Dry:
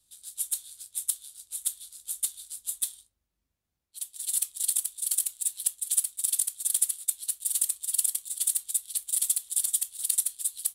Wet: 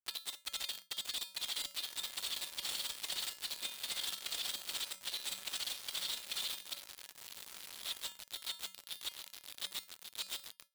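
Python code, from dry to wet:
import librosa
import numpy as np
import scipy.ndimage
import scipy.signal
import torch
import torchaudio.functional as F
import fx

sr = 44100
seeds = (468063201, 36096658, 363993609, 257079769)

p1 = x[::-1].copy()
p2 = scipy.signal.sosfilt(scipy.signal.butter(4, 4200.0, 'lowpass', fs=sr, output='sos'), p1)
p3 = p2 + fx.echo_diffused(p2, sr, ms=1433, feedback_pct=51, wet_db=-7.5, dry=0)
p4 = fx.quant_dither(p3, sr, seeds[0], bits=8, dither='none')
p5 = fx.peak_eq(p4, sr, hz=130.0, db=-12.5, octaves=1.2)
p6 = fx.level_steps(p5, sr, step_db=13)
p7 = scipy.signal.sosfilt(scipy.signal.butter(2, 43.0, 'highpass', fs=sr, output='sos'), p6)
p8 = fx.comb_fb(p7, sr, f0_hz=190.0, decay_s=0.57, harmonics='odd', damping=0.0, mix_pct=70)
p9 = fx.leveller(p8, sr, passes=3)
y = p9 * librosa.db_to_amplitude(15.0)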